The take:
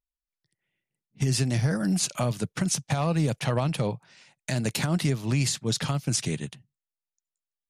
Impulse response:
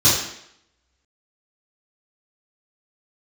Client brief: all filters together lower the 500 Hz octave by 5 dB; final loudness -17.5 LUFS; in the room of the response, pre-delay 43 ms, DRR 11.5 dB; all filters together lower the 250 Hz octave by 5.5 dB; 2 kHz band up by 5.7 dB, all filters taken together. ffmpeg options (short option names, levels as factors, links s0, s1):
-filter_complex "[0:a]equalizer=f=250:t=o:g=-8.5,equalizer=f=500:t=o:g=-4.5,equalizer=f=2000:t=o:g=7.5,asplit=2[s0][s1];[1:a]atrim=start_sample=2205,adelay=43[s2];[s1][s2]afir=irnorm=-1:irlink=0,volume=0.0266[s3];[s0][s3]amix=inputs=2:normalize=0,volume=2.99"